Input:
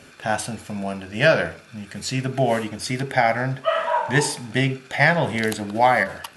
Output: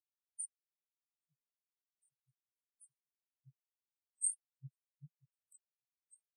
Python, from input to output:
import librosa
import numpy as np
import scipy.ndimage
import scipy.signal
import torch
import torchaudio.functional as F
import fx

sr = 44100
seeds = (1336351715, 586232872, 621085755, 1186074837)

y = fx.brickwall_bandstop(x, sr, low_hz=160.0, high_hz=8000.0)
y = fx.high_shelf(y, sr, hz=4500.0, db=-11.5)
y = fx.echo_stepped(y, sr, ms=630, hz=2600.0, octaves=0.7, feedback_pct=70, wet_db=-5)
y = fx.filter_lfo_highpass(y, sr, shape='sine', hz=5.1, low_hz=610.0, high_hz=6500.0, q=7.2)
y = fx.spectral_expand(y, sr, expansion=4.0)
y = y * librosa.db_to_amplitude(-1.0)